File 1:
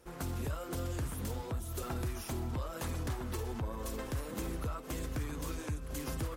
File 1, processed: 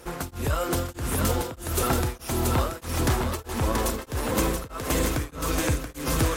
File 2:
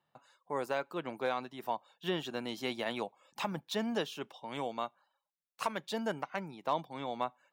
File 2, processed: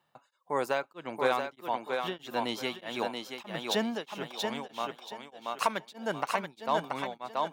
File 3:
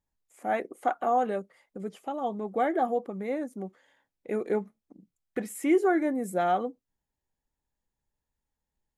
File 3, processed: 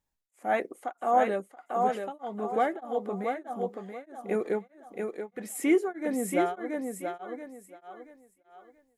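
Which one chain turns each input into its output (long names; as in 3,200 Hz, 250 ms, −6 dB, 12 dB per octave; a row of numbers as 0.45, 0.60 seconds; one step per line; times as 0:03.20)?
low-shelf EQ 430 Hz −4 dB
on a send: feedback echo with a high-pass in the loop 680 ms, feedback 31%, high-pass 200 Hz, level −3.5 dB
on the sum: tremolo along a rectified sine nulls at 1.6 Hz
normalise the peak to −12 dBFS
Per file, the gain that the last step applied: +16.5, +7.0, +3.5 decibels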